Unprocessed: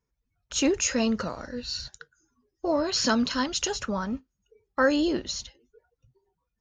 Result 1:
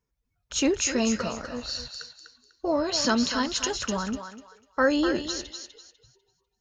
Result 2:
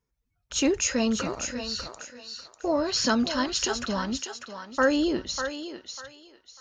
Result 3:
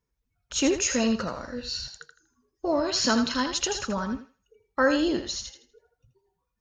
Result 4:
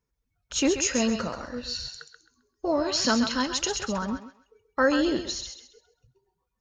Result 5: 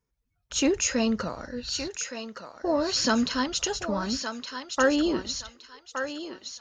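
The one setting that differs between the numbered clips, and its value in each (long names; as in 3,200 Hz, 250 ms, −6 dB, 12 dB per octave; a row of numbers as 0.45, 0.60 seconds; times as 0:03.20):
feedback echo with a high-pass in the loop, delay time: 248, 596, 81, 132, 1,167 milliseconds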